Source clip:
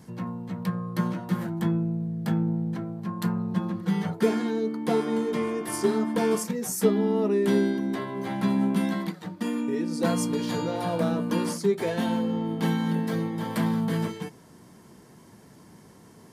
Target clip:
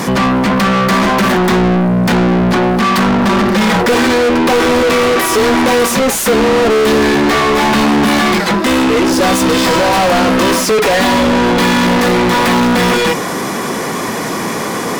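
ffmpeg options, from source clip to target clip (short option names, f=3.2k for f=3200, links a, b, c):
-filter_complex "[0:a]asetrate=48000,aresample=44100,acontrast=53,asplit=2[a][b];[b]highpass=f=720:p=1,volume=42dB,asoftclip=type=tanh:threshold=-4.5dB[c];[a][c]amix=inputs=2:normalize=0,lowpass=f=4.2k:p=1,volume=-6dB"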